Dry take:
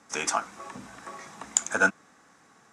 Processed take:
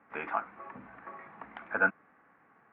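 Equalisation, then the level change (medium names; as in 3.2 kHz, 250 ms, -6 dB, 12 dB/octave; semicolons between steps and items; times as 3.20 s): steep low-pass 2.4 kHz 36 dB/octave; distance through air 150 m; bass shelf 460 Hz -4.5 dB; -2.5 dB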